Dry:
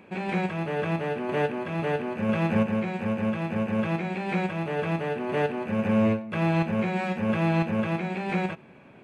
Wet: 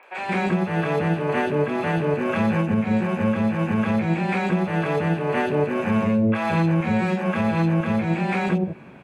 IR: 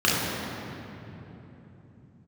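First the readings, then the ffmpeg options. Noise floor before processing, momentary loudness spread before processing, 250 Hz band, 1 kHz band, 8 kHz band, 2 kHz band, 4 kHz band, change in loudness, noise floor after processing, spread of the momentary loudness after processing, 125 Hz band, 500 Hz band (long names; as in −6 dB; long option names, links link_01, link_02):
−51 dBFS, 5 LU, +5.0 dB, +5.0 dB, can't be measured, +5.0 dB, +3.5 dB, +5.0 dB, −32 dBFS, 2 LU, +5.5 dB, +4.0 dB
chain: -filter_complex "[0:a]acrossover=split=580|2900[link_01][link_02][link_03];[link_03]adelay=30[link_04];[link_01]adelay=180[link_05];[link_05][link_02][link_04]amix=inputs=3:normalize=0,alimiter=limit=-20.5dB:level=0:latency=1:release=192,volume=8dB"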